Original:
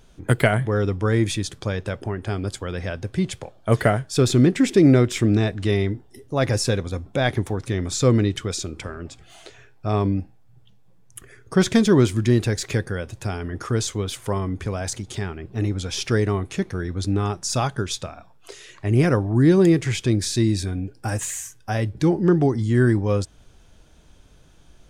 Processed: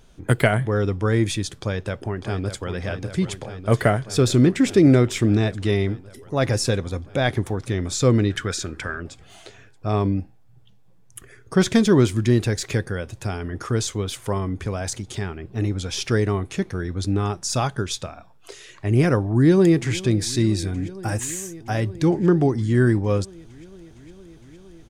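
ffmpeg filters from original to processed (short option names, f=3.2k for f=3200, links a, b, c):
-filter_complex "[0:a]asplit=2[a][b];[b]afade=t=in:st=1.56:d=0.01,afade=t=out:st=2.69:d=0.01,aecho=0:1:600|1200|1800|2400|3000|3600|4200|4800|5400|6000|6600|7200:0.334965|0.267972|0.214378|0.171502|0.137202|0.109761|0.0878092|0.0702473|0.0561979|0.0449583|0.0359666|0.0287733[c];[a][c]amix=inputs=2:normalize=0,asettb=1/sr,asplit=3[d][e][f];[d]atrim=end=8.304[g];[e]atrim=start=8.3:end=9,asetpts=PTS-STARTPTS,afade=t=in:d=0.004:c=qsin,afade=t=out:st=0.696:d=0.004:c=qsin,equalizer=f=1.6k:t=o:w=0.53:g=13[h];[f]atrim=start=8.996[i];[g][h]acrossfade=d=0.004:c1=hsin:c2=qsin[j];[j][i]acrossfade=d=0.004:c1=qsin:c2=hsin,asplit=2[k][l];[l]afade=t=in:st=19.29:d=0.01,afade=t=out:st=19.96:d=0.01,aecho=0:1:460|920|1380|1840|2300|2760|3220|3680|4140|4600|5060|5520:0.125893|0.107009|0.0909574|0.0773138|0.0657167|0.0558592|0.0474803|0.0403583|0.0343045|0.0291588|0.024785|0.0210673[m];[k][m]amix=inputs=2:normalize=0"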